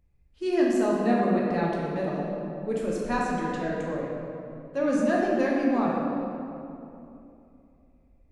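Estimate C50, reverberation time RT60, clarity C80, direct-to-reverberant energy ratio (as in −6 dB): −1.5 dB, 2.8 s, 0.5 dB, −4.0 dB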